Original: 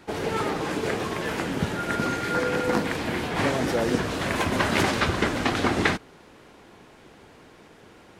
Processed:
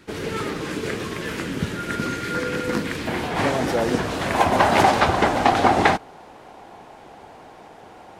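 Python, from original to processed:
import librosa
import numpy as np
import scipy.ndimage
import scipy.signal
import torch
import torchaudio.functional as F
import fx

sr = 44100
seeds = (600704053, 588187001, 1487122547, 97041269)

y = fx.peak_eq(x, sr, hz=770.0, db=fx.steps((0.0, -10.0), (3.07, 4.0), (4.35, 13.5)), octaves=0.8)
y = y * 10.0 ** (1.5 / 20.0)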